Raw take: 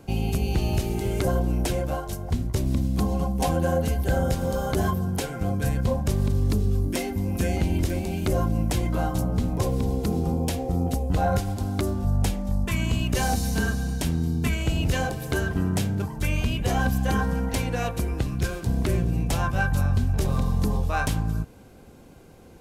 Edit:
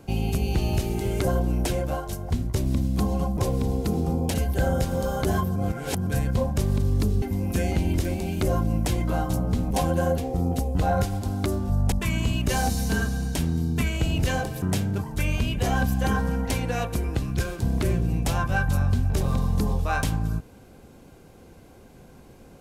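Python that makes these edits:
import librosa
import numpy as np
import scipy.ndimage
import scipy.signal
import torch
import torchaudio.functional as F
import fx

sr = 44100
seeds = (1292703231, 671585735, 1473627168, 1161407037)

y = fx.edit(x, sr, fx.swap(start_s=3.37, length_s=0.47, other_s=9.56, other_length_s=0.97),
    fx.reverse_span(start_s=5.06, length_s=0.51),
    fx.cut(start_s=6.72, length_s=0.35),
    fx.cut(start_s=12.27, length_s=0.31),
    fx.cut(start_s=15.28, length_s=0.38), tone=tone)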